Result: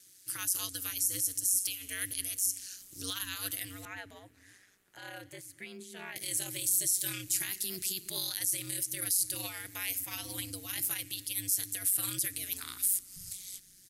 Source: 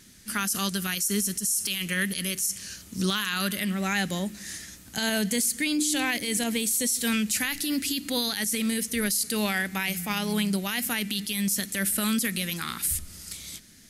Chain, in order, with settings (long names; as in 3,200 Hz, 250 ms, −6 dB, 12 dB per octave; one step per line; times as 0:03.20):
0:03.85–0:06.16: three-way crossover with the lows and the highs turned down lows −14 dB, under 280 Hz, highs −22 dB, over 2,400 Hz
multiband delay without the direct sound highs, lows 250 ms, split 160 Hz
ring modulation 94 Hz
first-order pre-emphasis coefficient 0.8